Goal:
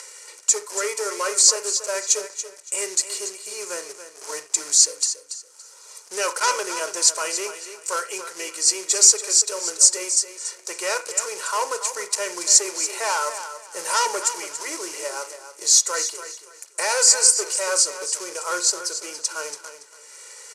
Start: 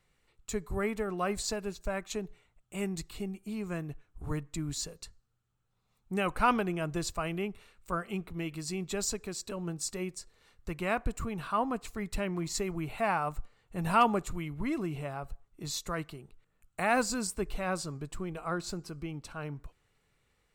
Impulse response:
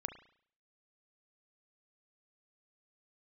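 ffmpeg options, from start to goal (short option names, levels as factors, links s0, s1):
-filter_complex "[0:a]aecho=1:1:2.1:0.89,acompressor=mode=upward:threshold=0.0126:ratio=2.5,acrusher=bits=3:mode=log:mix=0:aa=0.000001,asoftclip=type=tanh:threshold=0.0501,aexciter=amount=2.8:drive=8.3:freq=4100,highpass=f=480:w=0.5412,highpass=f=480:w=1.3066,equalizer=f=780:t=q:w=4:g=-5,equalizer=f=3700:t=q:w=4:g=-9,equalizer=f=6100:t=q:w=4:g=5,lowpass=f=9100:w=0.5412,lowpass=f=9100:w=1.3066,aecho=1:1:283|566|849:0.282|0.0705|0.0176,asplit=2[s0][s1];[1:a]atrim=start_sample=2205,atrim=end_sample=4410[s2];[s1][s2]afir=irnorm=-1:irlink=0,volume=2.37[s3];[s0][s3]amix=inputs=2:normalize=0"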